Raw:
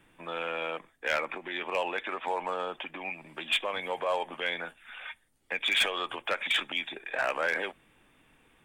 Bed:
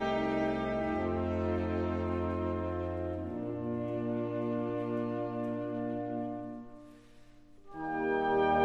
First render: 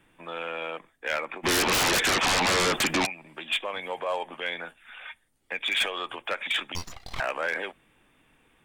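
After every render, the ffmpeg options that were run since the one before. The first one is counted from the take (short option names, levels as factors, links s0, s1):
-filter_complex "[0:a]asplit=3[s0][s1][s2];[s0]afade=t=out:st=1.43:d=0.02[s3];[s1]aeval=exprs='0.1*sin(PI/2*7.94*val(0)/0.1)':c=same,afade=t=in:st=1.43:d=0.02,afade=t=out:st=3.05:d=0.02[s4];[s2]afade=t=in:st=3.05:d=0.02[s5];[s3][s4][s5]amix=inputs=3:normalize=0,asettb=1/sr,asplit=3[s6][s7][s8];[s6]atrim=end=6.754[s9];[s7]atrim=start=6.75:end=7.2,asetpts=PTS-STARTPTS,afade=t=in:d=0.004:c=qsin,afade=t=out:st=0.446:d=0.004:c=qsin,aeval=exprs='abs(val(0))':c=same[s10];[s8]atrim=start=7.196[s11];[s9][s10]acrossfade=d=0.004:c1=hsin:c2=qsin[s12];[s12][s11]acrossfade=d=0.004:c1=qsin:c2=hsin"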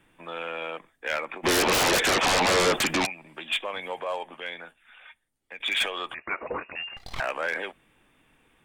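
-filter_complex "[0:a]asettb=1/sr,asplit=3[s0][s1][s2];[s0]atrim=end=1.404[s3];[s1]atrim=start=1.4:end=2.79,asetpts=PTS-STARTPTS,afade=t=in:d=0.004:c=qsin,afade=t=out:st=1.386:d=0.004:c=qsin,equalizer=f=540:w=1.2:g=5.5[s4];[s2]atrim=start=2.786[s5];[s3][s4]acrossfade=d=0.004:c1=hsin:c2=qsin[s6];[s6][s5]acrossfade=d=0.004:c1=qsin:c2=hsin,asettb=1/sr,asplit=3[s7][s8][s9];[s7]atrim=end=6.144[s10];[s8]atrim=start=6.14:end=6.97,asetpts=PTS-STARTPTS,afade=t=in:d=0.004:c=qsin,afade=t=out:st=0.826:d=0.004:c=qsin,lowpass=f=2400:t=q:w=0.5098,lowpass=f=2400:t=q:w=0.6013,lowpass=f=2400:t=q:w=0.9,lowpass=f=2400:t=q:w=2.563,afreqshift=-2800[s11];[s9]atrim=start=6.966[s12];[s10][s11]acrossfade=d=0.004:c1=hsin:c2=qsin[s13];[s13][s12]acrossfade=d=0.004:c1=qsin:c2=hsin,asplit=2[s14][s15];[s14]atrim=end=5.6,asetpts=PTS-STARTPTS,afade=t=out:st=3.86:d=1.74:c=qua:silence=0.354813[s16];[s15]atrim=start=5.6,asetpts=PTS-STARTPTS,afade=t=in:d=0.004:c=hsin:silence=0.354813[s17];[s16][s17]concat=n=2:v=0:a=1"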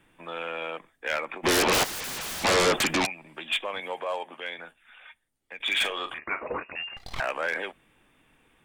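-filter_complex "[0:a]asplit=3[s0][s1][s2];[s0]afade=t=out:st=1.83:d=0.02[s3];[s1]aeval=exprs='0.0316*(abs(mod(val(0)/0.0316+3,4)-2)-1)':c=same,afade=t=in:st=1.83:d=0.02,afade=t=out:st=2.43:d=0.02[s4];[s2]afade=t=in:st=2.43:d=0.02[s5];[s3][s4][s5]amix=inputs=3:normalize=0,asettb=1/sr,asplit=3[s6][s7][s8];[s6]atrim=end=3.804[s9];[s7]atrim=start=3.8:end=4.59,asetpts=PTS-STARTPTS,afade=t=in:d=0.004:c=qsin,afade=t=out:st=0.786:d=0.004:c=qsin,highpass=180[s10];[s8]atrim=start=4.586[s11];[s9][s10]acrossfade=d=0.004:c1=hsin:c2=qsin[s12];[s12][s11]acrossfade=d=0.004:c1=qsin:c2=hsin,asettb=1/sr,asplit=3[s13][s14][s15];[s13]atrim=end=5.614[s16];[s14]atrim=start=5.61:end=6.53,asetpts=PTS-STARTPTS,afade=t=in:d=0.004:c=qsin,afade=t=out:st=0.916:d=0.004:c=qsin,asplit=2[s17][s18];[s18]adelay=41,volume=0.316[s19];[s17][s19]amix=inputs=2:normalize=0,atrim=end_sample=40572[s20];[s15]atrim=start=6.526[s21];[s16][s20]acrossfade=d=0.004:c1=hsin:c2=qsin[s22];[s22][s21]acrossfade=d=0.004:c1=qsin:c2=hsin"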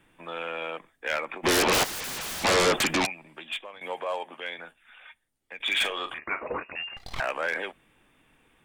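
-filter_complex "[0:a]asplit=2[s0][s1];[s0]atrim=end=3.81,asetpts=PTS-STARTPTS,afade=t=out:st=3.11:d=0.7:silence=0.16788[s2];[s1]atrim=start=3.81,asetpts=PTS-STARTPTS,afade=t=in:d=0.004:c=hsin:silence=0.16788[s3];[s2][s3]concat=n=2:v=0:a=1"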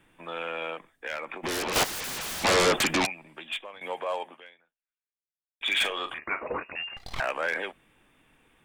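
-filter_complex "[0:a]asettb=1/sr,asplit=3[s0][s1][s2];[s0]atrim=end=0.734[s3];[s1]atrim=start=0.73:end=1.76,asetpts=PTS-STARTPTS,afade=t=in:d=0.004:c=qsin,afade=t=out:st=1.026:d=0.004:c=qsin,acompressor=threshold=0.0251:ratio=2.5:attack=3.2:release=140:knee=1:detection=peak[s4];[s2]atrim=start=1.756[s5];[s3][s4]acrossfade=d=0.004:c1=hsin:c2=qsin[s6];[s6][s5]acrossfade=d=0.004:c1=qsin:c2=hsin,asplit=2[s7][s8];[s7]atrim=end=5.61,asetpts=PTS-STARTPTS,afade=t=out:st=4.27:d=1.34:c=exp[s9];[s8]atrim=start=5.61,asetpts=PTS-STARTPTS,afade=t=in:d=0.004:c=hsin[s10];[s9][s10]concat=n=2:v=0:a=1"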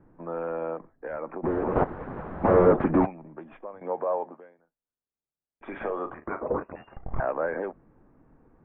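-af "lowpass=f=1500:w=0.5412,lowpass=f=1500:w=1.3066,tiltshelf=f=1100:g=9"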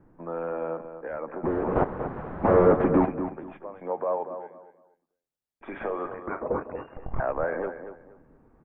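-filter_complex "[0:a]asplit=2[s0][s1];[s1]adelay=237,lowpass=f=2500:p=1,volume=0.335,asplit=2[s2][s3];[s3]adelay=237,lowpass=f=2500:p=1,volume=0.25,asplit=2[s4][s5];[s5]adelay=237,lowpass=f=2500:p=1,volume=0.25[s6];[s0][s2][s4][s6]amix=inputs=4:normalize=0"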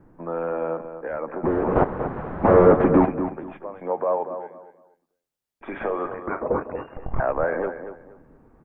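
-af "volume=1.68"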